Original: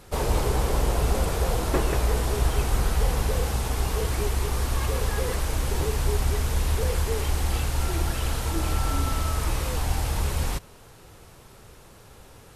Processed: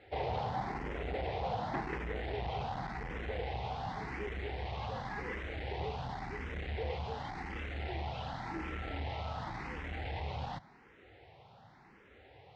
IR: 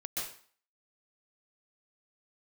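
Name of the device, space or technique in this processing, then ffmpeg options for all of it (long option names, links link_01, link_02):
barber-pole phaser into a guitar amplifier: -filter_complex "[0:a]asplit=2[link_01][link_02];[link_02]afreqshift=0.9[link_03];[link_01][link_03]amix=inputs=2:normalize=1,asoftclip=type=tanh:threshold=-22.5dB,highpass=87,equalizer=frequency=770:width_type=q:width=4:gain=9,equalizer=frequency=1200:width_type=q:width=4:gain=-4,equalizer=frequency=2000:width_type=q:width=4:gain=8,lowpass=frequency=3800:width=0.5412,lowpass=frequency=3800:width=1.3066,volume=-6dB"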